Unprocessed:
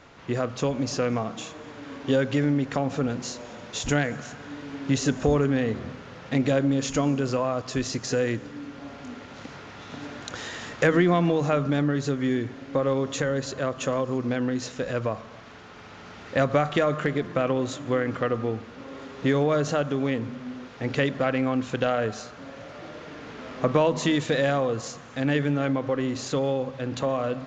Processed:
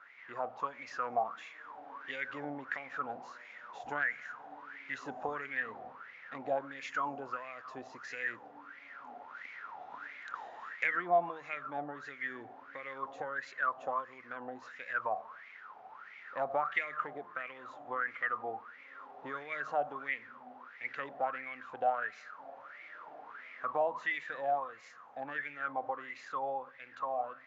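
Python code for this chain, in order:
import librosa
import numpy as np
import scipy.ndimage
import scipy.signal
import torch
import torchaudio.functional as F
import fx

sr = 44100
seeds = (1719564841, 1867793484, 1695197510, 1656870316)

y = fx.wah_lfo(x, sr, hz=1.5, low_hz=730.0, high_hz=2200.0, q=12.0)
y = fx.rider(y, sr, range_db=4, speed_s=2.0)
y = y * 10.0 ** (5.5 / 20.0)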